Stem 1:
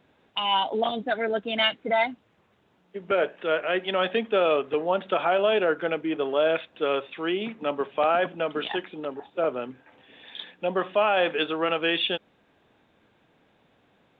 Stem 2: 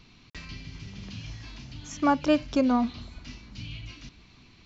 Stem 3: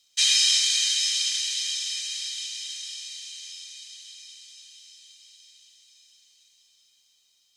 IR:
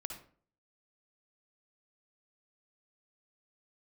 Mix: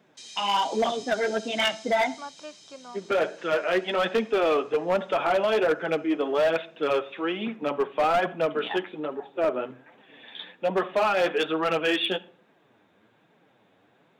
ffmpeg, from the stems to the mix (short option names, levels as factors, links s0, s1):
-filter_complex "[0:a]highpass=130,acontrast=83,flanger=delay=4.4:depth=7:regen=-3:speed=1.2:shape=triangular,volume=0.631,asplit=2[s0][s1];[s1]volume=0.282[s2];[1:a]highpass=610,adelay=150,volume=0.211[s3];[2:a]lowpass=9100,alimiter=limit=0.119:level=0:latency=1,volume=0.168[s4];[3:a]atrim=start_sample=2205[s5];[s2][s5]afir=irnorm=-1:irlink=0[s6];[s0][s3][s4][s6]amix=inputs=4:normalize=0,equalizer=f=3000:w=2.1:g=-3.5,asoftclip=type=hard:threshold=0.126"